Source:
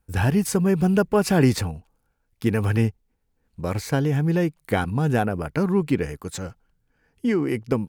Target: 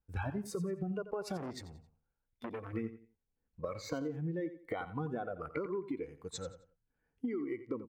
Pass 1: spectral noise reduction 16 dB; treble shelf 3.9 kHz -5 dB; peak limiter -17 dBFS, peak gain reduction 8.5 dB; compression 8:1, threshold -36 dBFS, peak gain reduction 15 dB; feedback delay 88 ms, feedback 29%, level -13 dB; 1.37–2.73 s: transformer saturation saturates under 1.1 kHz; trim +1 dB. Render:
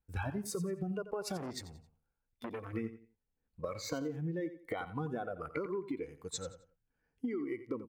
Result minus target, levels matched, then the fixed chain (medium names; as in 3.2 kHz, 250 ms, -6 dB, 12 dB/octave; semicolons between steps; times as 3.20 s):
8 kHz band +5.5 dB
spectral noise reduction 16 dB; treble shelf 3.9 kHz -13.5 dB; peak limiter -17 dBFS, peak gain reduction 8.5 dB; compression 8:1, threshold -36 dBFS, peak gain reduction 15 dB; feedback delay 88 ms, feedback 29%, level -13 dB; 1.37–2.73 s: transformer saturation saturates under 1.1 kHz; trim +1 dB